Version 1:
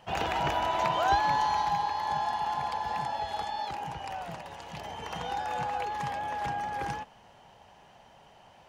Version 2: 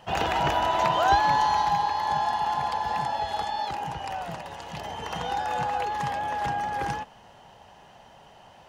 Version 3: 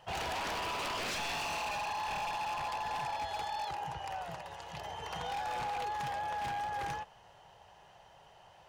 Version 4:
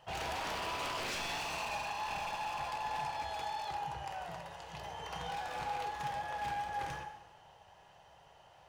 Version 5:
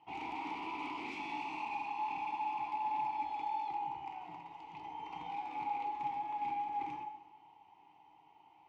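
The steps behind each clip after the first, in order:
notch filter 2,300 Hz, Q 17; level +4.5 dB
parametric band 240 Hz −14 dB 0.55 octaves; wave folding −25 dBFS; level −6.5 dB
dense smooth reverb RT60 1.1 s, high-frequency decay 0.85×, DRR 4.5 dB; level −3 dB
formant filter u; level +10 dB

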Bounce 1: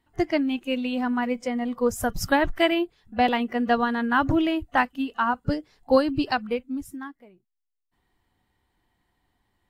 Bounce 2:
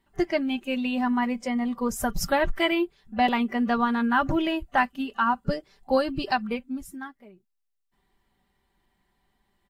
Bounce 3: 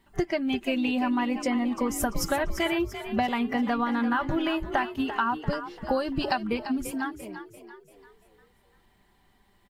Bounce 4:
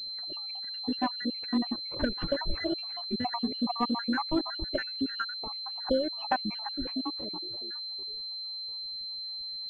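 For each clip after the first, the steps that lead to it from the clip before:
in parallel at −3 dB: brickwall limiter −17.5 dBFS, peak gain reduction 10 dB; on the sum: comb filter 5.1 ms, depth 59%; level −5 dB
downward compressor, threshold −31 dBFS, peak gain reduction 13.5 dB; on a send: echo with shifted repeats 342 ms, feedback 45%, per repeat +42 Hz, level −11 dB; on the sum: level +7 dB
time-frequency cells dropped at random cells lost 68%; switching amplifier with a slow clock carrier 4,100 Hz

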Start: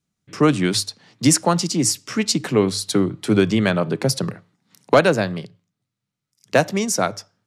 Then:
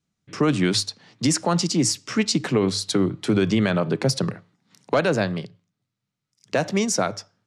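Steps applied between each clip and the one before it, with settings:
low-pass filter 7,800 Hz 12 dB per octave
brickwall limiter −10.5 dBFS, peak gain reduction 7.5 dB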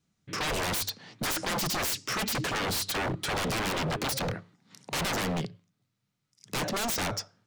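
wave folding −27.5 dBFS
level +2.5 dB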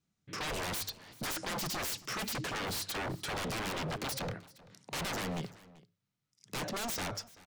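single-tap delay 386 ms −21 dB
level −6.5 dB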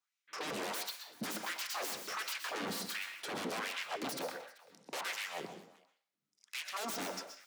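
auto-filter high-pass sine 1.4 Hz 210–2,500 Hz
convolution reverb RT60 0.40 s, pre-delay 112 ms, DRR 7 dB
level −4.5 dB

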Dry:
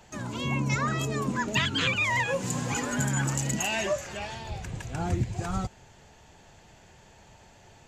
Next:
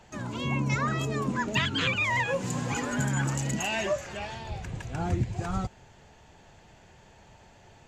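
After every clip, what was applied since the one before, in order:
high-shelf EQ 6,300 Hz −8 dB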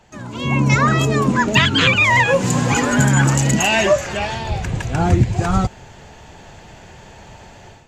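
automatic gain control gain up to 12 dB
level +2 dB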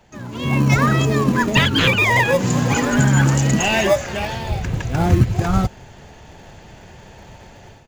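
downsampling to 16,000 Hz
in parallel at −9 dB: decimation without filtering 31×
on the sum: level −2.5 dB

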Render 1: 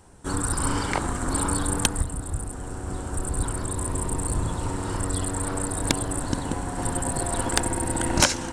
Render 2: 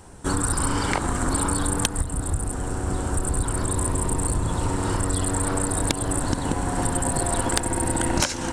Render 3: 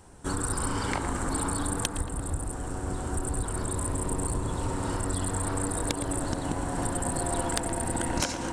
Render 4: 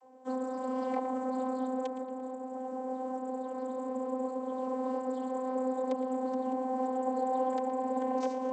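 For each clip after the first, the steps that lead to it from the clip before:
downward compressor 5 to 1, threshold −26 dBFS, peak gain reduction 12 dB; level +6.5 dB
tape delay 116 ms, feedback 90%, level −7.5 dB, low-pass 1,900 Hz; level −6.5 dB
flat-topped bell 570 Hz +12.5 dB; channel vocoder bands 32, saw 258 Hz; level −8 dB

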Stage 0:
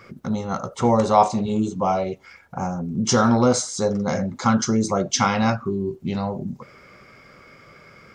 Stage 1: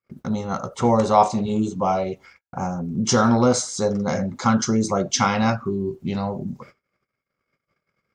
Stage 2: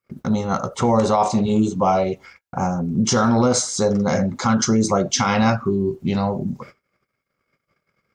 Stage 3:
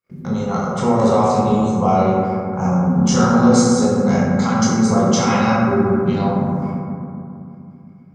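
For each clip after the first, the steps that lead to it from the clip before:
noise gate −43 dBFS, range −44 dB
brickwall limiter −13 dBFS, peak gain reduction 9.5 dB; level +4.5 dB
convolution reverb RT60 2.7 s, pre-delay 18 ms, DRR −6 dB; level −5 dB

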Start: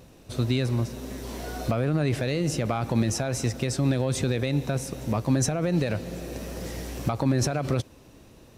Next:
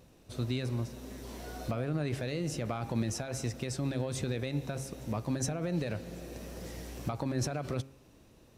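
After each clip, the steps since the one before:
hum removal 134.6 Hz, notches 21
level −8 dB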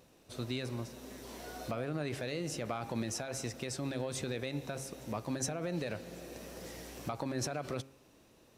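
low-shelf EQ 180 Hz −11 dB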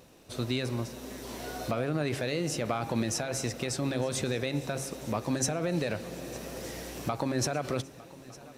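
feedback echo with a long and a short gap by turns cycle 1,208 ms, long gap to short 3 to 1, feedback 57%, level −20.5 dB
level +6.5 dB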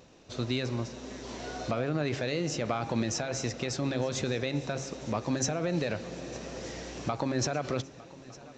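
downsampling to 16,000 Hz

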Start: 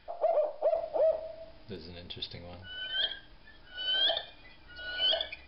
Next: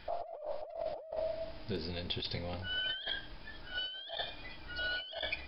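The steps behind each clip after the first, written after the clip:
compressor whose output falls as the input rises −40 dBFS, ratio −1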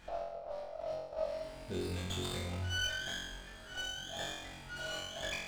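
flutter between parallel walls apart 3.8 metres, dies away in 0.88 s
windowed peak hold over 5 samples
level −4.5 dB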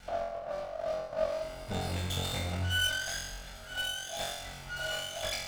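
lower of the sound and its delayed copy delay 1.4 ms
level +6 dB

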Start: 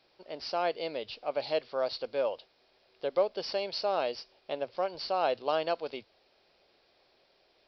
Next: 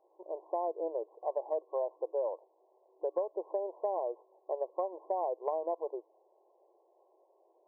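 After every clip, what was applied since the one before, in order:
brick-wall band-pass 320–1,100 Hz
downward compressor 6 to 1, threshold −32 dBFS, peak gain reduction 10.5 dB
level +2.5 dB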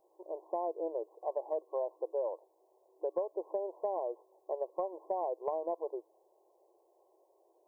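bass and treble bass +12 dB, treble +11 dB
level −2 dB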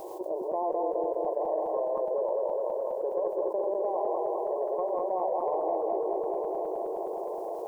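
feedback delay that plays each chunk backwards 104 ms, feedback 79%, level −1.5 dB
feedback echo with a high-pass in the loop 896 ms, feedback 35%, high-pass 200 Hz, level −14 dB
envelope flattener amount 70%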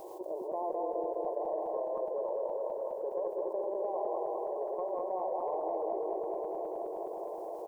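repeating echo 284 ms, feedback 41%, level −11 dB
level −5.5 dB

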